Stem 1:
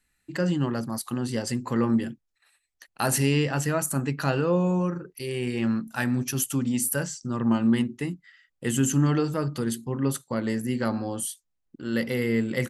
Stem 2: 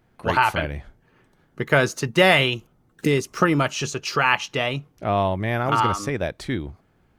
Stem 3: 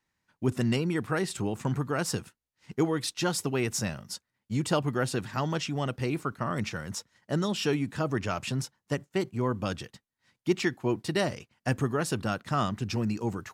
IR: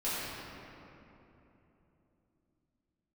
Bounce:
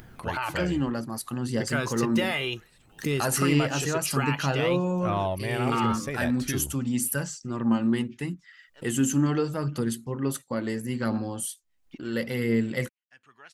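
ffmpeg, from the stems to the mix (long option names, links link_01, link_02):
-filter_complex "[0:a]aphaser=in_gain=1:out_gain=1:delay=4:decay=0.31:speed=0.73:type=triangular,adelay=200,volume=-2dB[link_01];[1:a]highshelf=frequency=8800:gain=7,volume=-2dB[link_02];[2:a]bandpass=frequency=2600:width_type=q:width=1.5:csg=0,adelay=1450,volume=-19.5dB[link_03];[link_02][link_03]amix=inputs=2:normalize=0,flanger=delay=0.6:depth=1.9:regen=52:speed=0.61:shape=sinusoidal,alimiter=limit=-18dB:level=0:latency=1:release=49,volume=0dB[link_04];[link_01][link_04]amix=inputs=2:normalize=0,acompressor=mode=upward:threshold=-34dB:ratio=2.5"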